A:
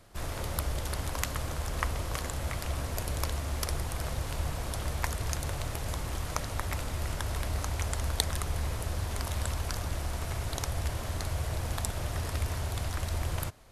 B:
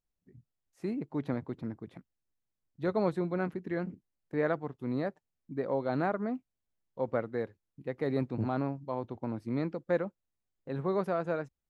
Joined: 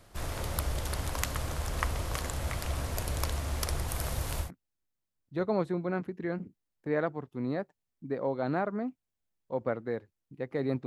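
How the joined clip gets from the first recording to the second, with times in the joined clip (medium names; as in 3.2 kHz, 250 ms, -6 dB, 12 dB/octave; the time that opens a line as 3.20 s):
A
3.88–4.51 s: treble shelf 11 kHz +10.5 dB
4.45 s: go over to B from 1.92 s, crossfade 0.12 s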